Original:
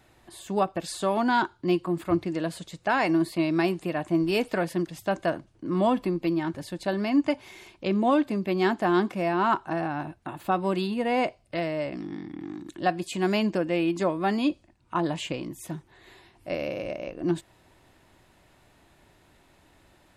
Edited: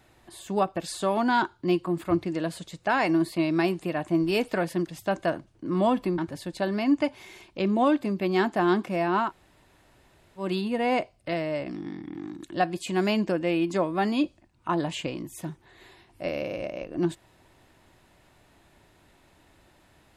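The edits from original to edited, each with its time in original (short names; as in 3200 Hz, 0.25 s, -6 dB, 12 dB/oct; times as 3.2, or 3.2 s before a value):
6.18–6.44 cut
9.52–10.69 room tone, crossfade 0.16 s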